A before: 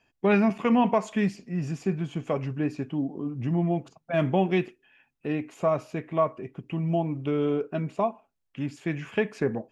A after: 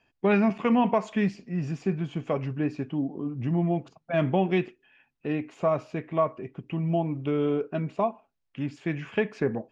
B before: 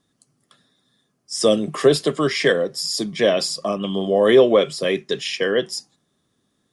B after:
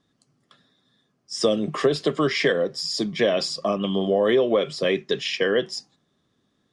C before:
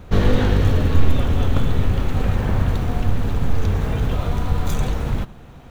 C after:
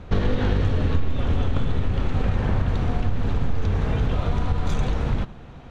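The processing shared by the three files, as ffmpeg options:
-af "lowpass=5.3k,acompressor=threshold=-16dB:ratio=6"

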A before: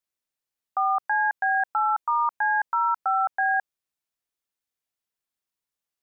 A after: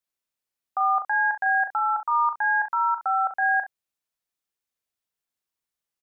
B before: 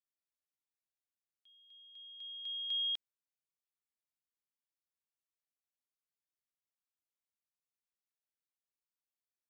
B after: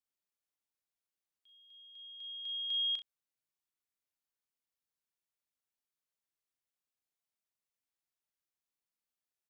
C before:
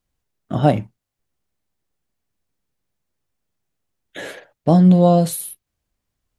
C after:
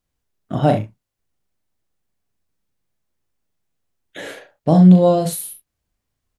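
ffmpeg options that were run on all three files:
-af "aecho=1:1:38|66:0.473|0.237,volume=-1dB"

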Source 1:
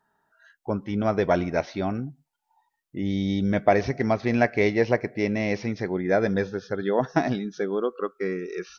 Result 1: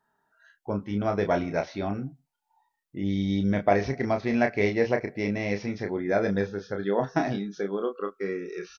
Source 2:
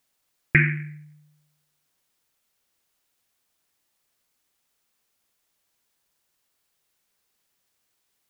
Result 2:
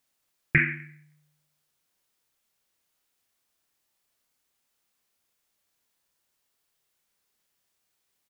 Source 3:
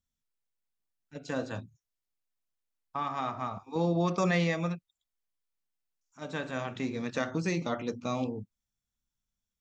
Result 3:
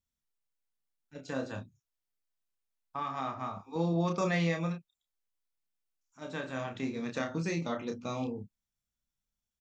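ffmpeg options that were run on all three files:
-filter_complex "[0:a]asplit=2[a][b];[b]adelay=30,volume=-6dB[c];[a][c]amix=inputs=2:normalize=0,volume=-3.5dB"

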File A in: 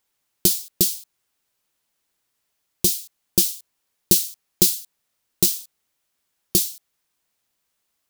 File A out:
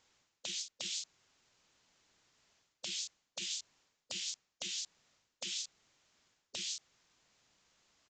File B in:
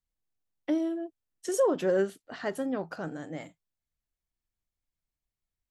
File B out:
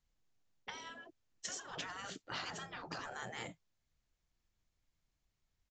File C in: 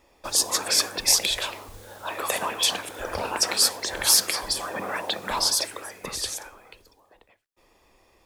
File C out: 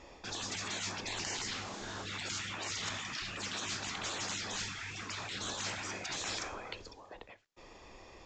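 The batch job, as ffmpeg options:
-af "areverse,acompressor=threshold=-28dB:ratio=8,areverse,afftfilt=real='re*lt(hypot(re,im),0.02)':imag='im*lt(hypot(re,im),0.02)':win_size=1024:overlap=0.75,aresample=16000,aresample=44100,equalizer=f=130:t=o:w=1.6:g=2.5,volume=6.5dB"

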